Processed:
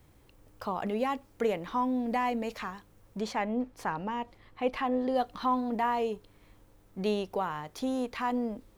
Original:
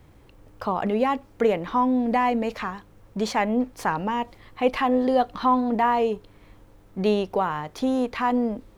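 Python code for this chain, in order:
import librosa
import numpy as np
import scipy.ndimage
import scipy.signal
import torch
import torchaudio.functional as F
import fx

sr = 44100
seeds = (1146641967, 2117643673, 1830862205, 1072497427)

y = fx.high_shelf(x, sr, hz=4800.0, db=fx.steps((0.0, 9.5), (3.19, -2.5), (5.14, 8.0)))
y = y * librosa.db_to_amplitude(-8.0)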